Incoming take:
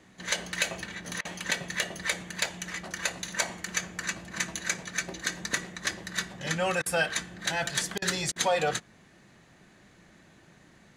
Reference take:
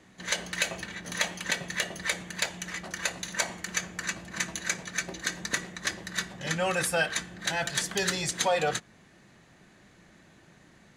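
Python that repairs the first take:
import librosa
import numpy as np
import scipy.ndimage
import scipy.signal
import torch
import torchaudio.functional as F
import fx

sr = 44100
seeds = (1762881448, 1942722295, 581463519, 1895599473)

y = fx.fix_interpolate(x, sr, at_s=(1.21, 6.82, 7.98, 8.32), length_ms=39.0)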